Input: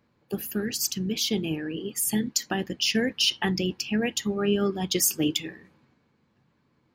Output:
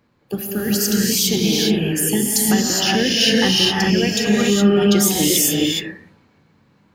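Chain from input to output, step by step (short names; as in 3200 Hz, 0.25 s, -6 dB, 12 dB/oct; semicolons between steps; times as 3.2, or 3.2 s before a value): non-linear reverb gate 0.44 s rising, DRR -4 dB; in parallel at -0.5 dB: limiter -14.5 dBFS, peak gain reduction 8 dB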